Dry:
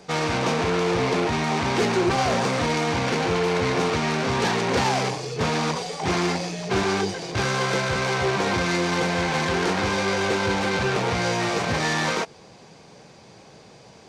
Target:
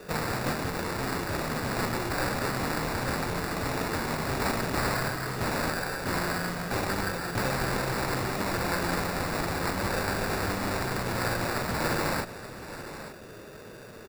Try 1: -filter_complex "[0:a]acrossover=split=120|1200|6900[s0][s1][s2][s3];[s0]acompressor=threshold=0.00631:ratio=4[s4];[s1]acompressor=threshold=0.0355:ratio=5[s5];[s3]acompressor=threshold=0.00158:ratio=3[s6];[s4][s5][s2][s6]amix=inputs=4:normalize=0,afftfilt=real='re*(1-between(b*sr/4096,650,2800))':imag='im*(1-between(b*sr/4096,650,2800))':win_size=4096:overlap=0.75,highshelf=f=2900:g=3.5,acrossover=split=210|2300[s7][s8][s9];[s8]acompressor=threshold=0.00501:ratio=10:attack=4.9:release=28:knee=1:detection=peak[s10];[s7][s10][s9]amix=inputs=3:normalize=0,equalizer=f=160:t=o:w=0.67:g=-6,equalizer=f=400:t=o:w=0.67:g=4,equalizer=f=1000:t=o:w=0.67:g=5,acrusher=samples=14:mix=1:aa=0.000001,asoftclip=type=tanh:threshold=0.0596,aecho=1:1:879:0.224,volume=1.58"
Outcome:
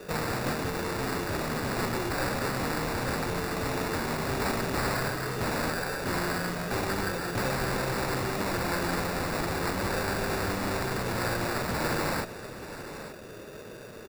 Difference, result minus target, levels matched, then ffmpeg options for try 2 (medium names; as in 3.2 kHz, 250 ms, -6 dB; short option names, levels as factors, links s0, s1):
saturation: distortion +11 dB; compression: peak gain reduction -7 dB
-filter_complex "[0:a]acrossover=split=120|1200|6900[s0][s1][s2][s3];[s0]acompressor=threshold=0.00631:ratio=4[s4];[s1]acompressor=threshold=0.0355:ratio=5[s5];[s3]acompressor=threshold=0.00158:ratio=3[s6];[s4][s5][s2][s6]amix=inputs=4:normalize=0,afftfilt=real='re*(1-between(b*sr/4096,650,2800))':imag='im*(1-between(b*sr/4096,650,2800))':win_size=4096:overlap=0.75,highshelf=f=2900:g=3.5,acrossover=split=210|2300[s7][s8][s9];[s8]acompressor=threshold=0.00211:ratio=10:attack=4.9:release=28:knee=1:detection=peak[s10];[s7][s10][s9]amix=inputs=3:normalize=0,equalizer=f=160:t=o:w=0.67:g=-6,equalizer=f=400:t=o:w=0.67:g=4,equalizer=f=1000:t=o:w=0.67:g=5,acrusher=samples=14:mix=1:aa=0.000001,asoftclip=type=tanh:threshold=0.126,aecho=1:1:879:0.224,volume=1.58"